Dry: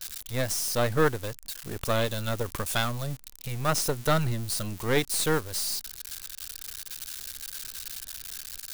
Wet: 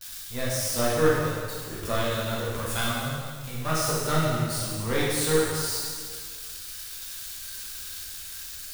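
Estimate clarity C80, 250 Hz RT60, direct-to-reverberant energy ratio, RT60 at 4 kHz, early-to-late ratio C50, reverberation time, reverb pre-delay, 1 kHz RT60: 1.0 dB, 1.8 s, −7.0 dB, 1.7 s, −1.5 dB, 1.8 s, 5 ms, 1.8 s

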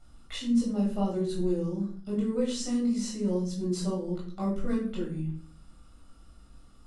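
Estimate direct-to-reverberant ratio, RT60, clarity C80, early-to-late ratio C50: −4.0 dB, 0.50 s, 10.5 dB, 6.0 dB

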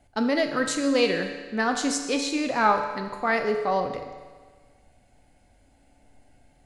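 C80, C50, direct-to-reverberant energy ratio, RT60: 8.0 dB, 6.5 dB, 4.0 dB, 1.5 s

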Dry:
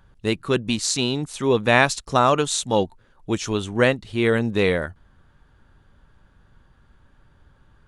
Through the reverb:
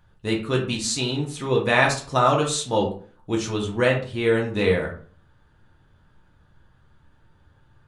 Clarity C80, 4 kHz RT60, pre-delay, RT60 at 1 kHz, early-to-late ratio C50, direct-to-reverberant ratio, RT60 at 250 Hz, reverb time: 12.5 dB, 0.30 s, 3 ms, 0.40 s, 8.5 dB, −1.0 dB, 0.50 s, 0.45 s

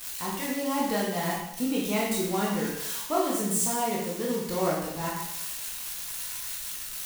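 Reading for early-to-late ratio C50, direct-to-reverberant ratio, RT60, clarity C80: 1.5 dB, −5.0 dB, 0.80 s, 5.0 dB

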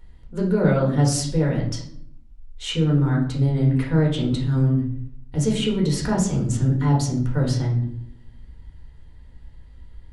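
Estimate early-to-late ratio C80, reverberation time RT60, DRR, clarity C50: 11.0 dB, 0.65 s, −3.0 dB, 6.5 dB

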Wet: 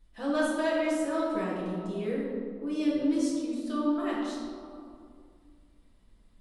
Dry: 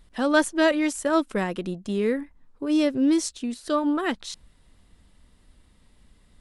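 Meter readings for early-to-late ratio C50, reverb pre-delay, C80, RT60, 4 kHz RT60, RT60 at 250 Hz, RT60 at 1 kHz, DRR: −1.0 dB, 6 ms, 1.0 dB, 2.4 s, 1.1 s, 2.5 s, 2.2 s, −7.5 dB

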